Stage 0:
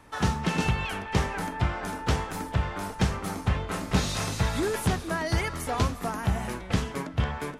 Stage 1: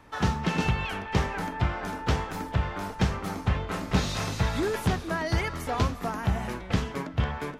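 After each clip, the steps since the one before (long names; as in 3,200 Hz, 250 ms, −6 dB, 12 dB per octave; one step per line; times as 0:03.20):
parametric band 9,600 Hz −8 dB 0.91 octaves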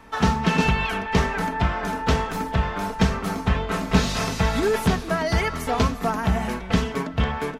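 comb filter 4.5 ms, depth 48%
level +5 dB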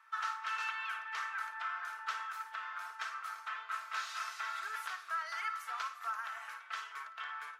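four-pole ladder high-pass 1,200 Hz, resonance 65%
flutter between parallel walls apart 9.5 metres, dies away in 0.27 s
level −6.5 dB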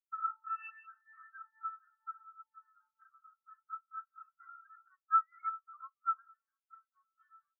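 every bin expanded away from the loudest bin 4 to 1
level +5.5 dB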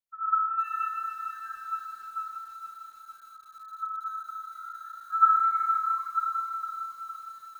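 convolution reverb RT60 2.8 s, pre-delay 50 ms, DRR −11.5 dB
feedback echo at a low word length 460 ms, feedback 55%, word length 8 bits, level −10 dB
level −2.5 dB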